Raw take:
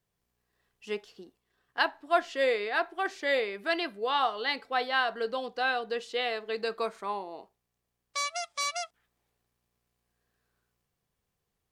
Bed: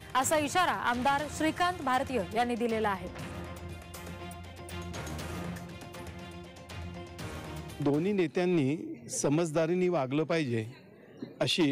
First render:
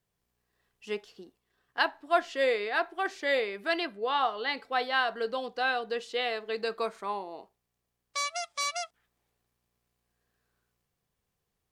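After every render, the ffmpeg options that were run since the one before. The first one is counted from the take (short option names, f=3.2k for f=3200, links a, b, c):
-filter_complex "[0:a]asettb=1/sr,asplit=3[a][b][c];[a]atrim=end=3.854[d];[b]atrim=start=3.85:end=4.57,asetpts=PTS-STARTPTS,afade=t=in:d=0.004:c=qsin,afade=t=out:st=0.716:d=0.004:c=qsin,highshelf=f=5.6k:g=-9[e];[c]atrim=start=4.566[f];[d][e]acrossfade=d=0.004:c1=hsin:c2=qsin[g];[g][f]acrossfade=d=0.004:c1=qsin:c2=hsin"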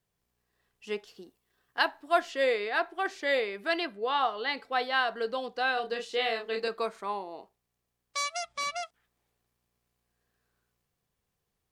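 -filter_complex "[0:a]asettb=1/sr,asplit=3[a][b][c];[a]atrim=end=1.074[d];[b]atrim=start=1.07:end=2.31,asetpts=PTS-STARTPTS,afade=t=in:d=0.004:c=qsin,afade=t=out:st=1.236:d=0.004:c=qsin,highshelf=f=7.9k:g=7.5[e];[c]atrim=start=2.306[f];[d][e]acrossfade=d=0.004:c1=hsin:c2=qsin[g];[g][f]acrossfade=d=0.004:c1=qsin:c2=hsin,asettb=1/sr,asplit=3[h][i][j];[h]atrim=end=5.744[k];[i]atrim=start=5.74:end=6.68,asetpts=PTS-STARTPTS,afade=t=in:d=0.004:c=qsin,afade=t=out:st=0.936:d=0.004:c=qsin,asplit=2[l][m];[m]adelay=31,volume=-4.5dB[n];[l][n]amix=inputs=2:normalize=0,atrim=end_sample=41454[o];[j]atrim=start=6.676[p];[k][o]acrossfade=d=0.004:c1=hsin:c2=qsin[q];[q][p]acrossfade=d=0.004:c1=qsin:c2=hsin,asettb=1/sr,asplit=3[r][s][t];[r]atrim=end=8.434[u];[s]atrim=start=8.43:end=8.83,asetpts=PTS-STARTPTS,afade=t=in:d=0.004:c=qsin,afade=t=out:st=0.396:d=0.004:c=qsin,bass=f=250:g=14,treble=f=4k:g=-7[v];[t]atrim=start=8.826[w];[u][v]acrossfade=d=0.004:c1=hsin:c2=qsin[x];[x][w]acrossfade=d=0.004:c1=qsin:c2=hsin"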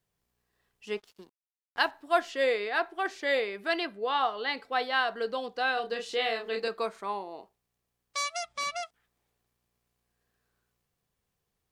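-filter_complex "[0:a]asettb=1/sr,asplit=3[a][b][c];[a]atrim=end=0.974[d];[b]atrim=start=0.97:end=1.91,asetpts=PTS-STARTPTS,afade=t=in:d=0.004:c=qsin,afade=t=out:st=0.936:d=0.004:c=qsin,aeval=exprs='sgn(val(0))*max(abs(val(0))-0.00188,0)':c=same[e];[c]atrim=start=1.906[f];[d][e]acrossfade=d=0.004:c1=hsin:c2=qsin[g];[g][f]acrossfade=d=0.004:c1=qsin:c2=hsin,asplit=3[h][i][j];[h]afade=t=out:st=6.03:d=0.02[k];[i]acompressor=mode=upward:threshold=-34dB:ratio=2.5:attack=3.2:release=140:knee=2.83:detection=peak,afade=t=in:st=6.03:d=0.02,afade=t=out:st=6.57:d=0.02[l];[j]afade=t=in:st=6.57:d=0.02[m];[k][l][m]amix=inputs=3:normalize=0"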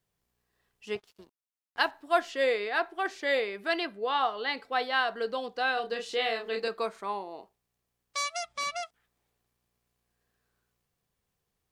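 -filter_complex "[0:a]asettb=1/sr,asplit=3[a][b][c];[a]atrim=end=0.954[d];[b]atrim=start=0.95:end=1.81,asetpts=PTS-STARTPTS,afade=t=in:d=0.004:c=qsin,afade=t=out:st=0.856:d=0.004:c=qsin,tremolo=f=280:d=0.519[e];[c]atrim=start=1.806[f];[d][e]acrossfade=d=0.004:c1=hsin:c2=qsin[g];[g][f]acrossfade=d=0.004:c1=qsin:c2=hsin"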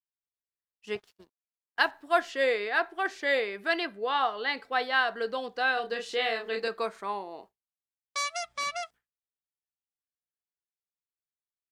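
-af "agate=range=-33dB:threshold=-47dB:ratio=3:detection=peak,equalizer=f=1.7k:t=o:w=0.59:g=3.5"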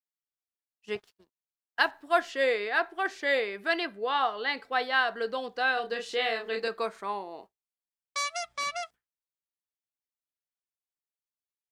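-af "agate=range=-7dB:threshold=-49dB:ratio=16:detection=peak"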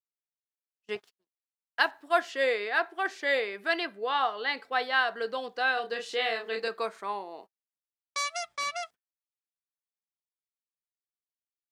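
-af "agate=range=-19dB:threshold=-48dB:ratio=16:detection=peak,highpass=f=250:p=1"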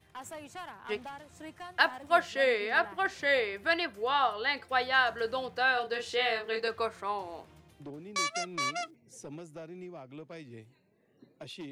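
-filter_complex "[1:a]volume=-16.5dB[a];[0:a][a]amix=inputs=2:normalize=0"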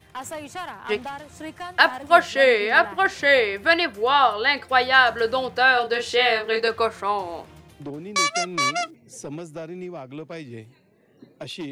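-af "volume=10dB,alimiter=limit=-1dB:level=0:latency=1"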